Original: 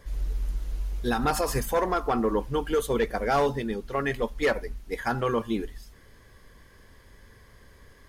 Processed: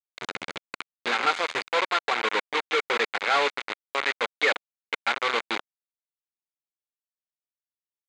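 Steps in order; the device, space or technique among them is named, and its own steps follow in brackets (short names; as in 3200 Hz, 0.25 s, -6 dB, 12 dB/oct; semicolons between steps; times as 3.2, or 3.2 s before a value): 1.85–2.34 low shelf 240 Hz -5 dB; hand-held game console (bit-crush 4-bit; speaker cabinet 500–5800 Hz, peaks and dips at 660 Hz -4 dB, 1400 Hz +4 dB, 2200 Hz +8 dB, 3700 Hz +4 dB, 5500 Hz -10 dB)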